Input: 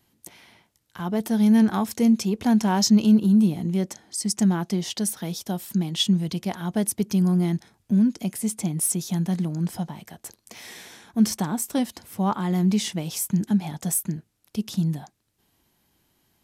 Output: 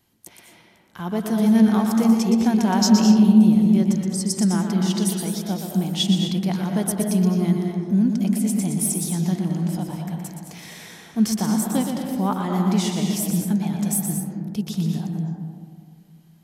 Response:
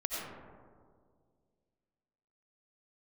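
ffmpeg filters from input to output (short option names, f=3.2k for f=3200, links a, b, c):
-filter_complex "[0:a]asplit=2[a][b];[1:a]atrim=start_sample=2205,adelay=120[c];[b][c]afir=irnorm=-1:irlink=0,volume=-5.5dB[d];[a][d]amix=inputs=2:normalize=0"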